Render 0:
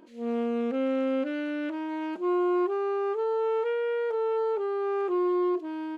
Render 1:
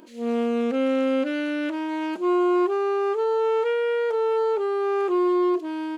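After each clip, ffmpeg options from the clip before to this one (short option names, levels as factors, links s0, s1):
-af "highshelf=f=3700:g=10,volume=1.68"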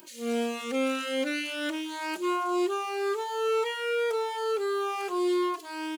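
-filter_complex "[0:a]crystalizer=i=9:c=0,asplit=2[s0][s1];[s1]adelay=2.7,afreqshift=-1.9[s2];[s0][s2]amix=inputs=2:normalize=1,volume=0.562"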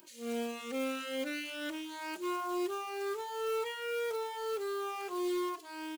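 -af "acrusher=bits=4:mode=log:mix=0:aa=0.000001,volume=0.422"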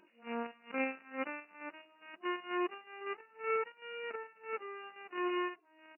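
-af "aeval=exprs='0.0596*(cos(1*acos(clip(val(0)/0.0596,-1,1)))-cos(1*PI/2))+0.0211*(cos(3*acos(clip(val(0)/0.0596,-1,1)))-cos(3*PI/2))+0.000531*(cos(8*acos(clip(val(0)/0.0596,-1,1)))-cos(8*PI/2))':c=same,acompressor=mode=upward:threshold=0.00112:ratio=2.5,afftfilt=real='re*between(b*sr/4096,170,2900)':imag='im*between(b*sr/4096,170,2900)':win_size=4096:overlap=0.75,volume=2.24"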